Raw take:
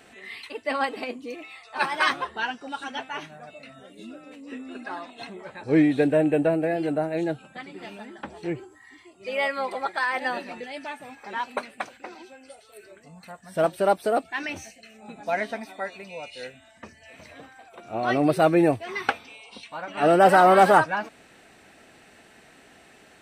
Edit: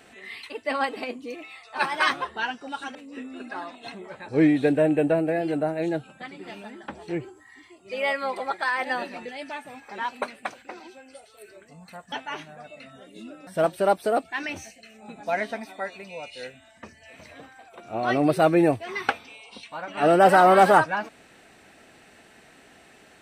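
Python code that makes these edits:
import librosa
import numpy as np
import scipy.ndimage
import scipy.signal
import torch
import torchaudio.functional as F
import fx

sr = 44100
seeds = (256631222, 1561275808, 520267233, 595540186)

y = fx.edit(x, sr, fx.move(start_s=2.95, length_s=1.35, to_s=13.47), tone=tone)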